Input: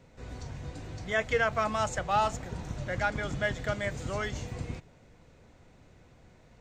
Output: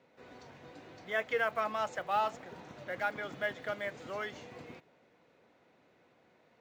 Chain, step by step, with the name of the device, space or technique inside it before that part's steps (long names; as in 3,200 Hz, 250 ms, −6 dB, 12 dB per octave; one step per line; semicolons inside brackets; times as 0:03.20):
early digital voice recorder (band-pass filter 290–3,900 Hz; one scale factor per block 7 bits)
level −4 dB